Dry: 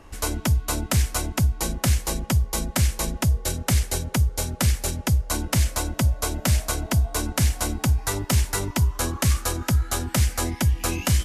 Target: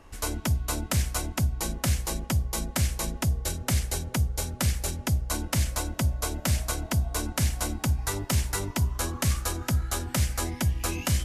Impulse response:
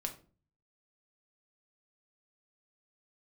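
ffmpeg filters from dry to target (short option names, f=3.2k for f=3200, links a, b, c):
-af "bandreject=f=62.31:t=h:w=4,bandreject=f=124.62:t=h:w=4,bandreject=f=186.93:t=h:w=4,bandreject=f=249.24:t=h:w=4,bandreject=f=311.55:t=h:w=4,bandreject=f=373.86:t=h:w=4,bandreject=f=436.17:t=h:w=4,bandreject=f=498.48:t=h:w=4,bandreject=f=560.79:t=h:w=4,bandreject=f=623.1:t=h:w=4,bandreject=f=685.41:t=h:w=4,bandreject=f=747.72:t=h:w=4,bandreject=f=810.03:t=h:w=4,volume=-4dB"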